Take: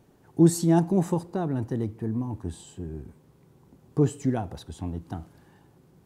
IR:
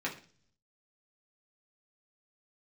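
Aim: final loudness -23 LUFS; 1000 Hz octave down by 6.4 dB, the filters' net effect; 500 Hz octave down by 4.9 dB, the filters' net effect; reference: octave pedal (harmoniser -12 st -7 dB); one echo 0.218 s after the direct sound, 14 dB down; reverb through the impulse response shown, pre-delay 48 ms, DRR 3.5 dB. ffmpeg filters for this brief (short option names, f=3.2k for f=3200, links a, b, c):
-filter_complex "[0:a]equalizer=f=500:t=o:g=-7,equalizer=f=1k:t=o:g=-5.5,aecho=1:1:218:0.2,asplit=2[a][b];[1:a]atrim=start_sample=2205,adelay=48[c];[b][c]afir=irnorm=-1:irlink=0,volume=-8.5dB[d];[a][d]amix=inputs=2:normalize=0,asplit=2[e][f];[f]asetrate=22050,aresample=44100,atempo=2,volume=-7dB[g];[e][g]amix=inputs=2:normalize=0,volume=3.5dB"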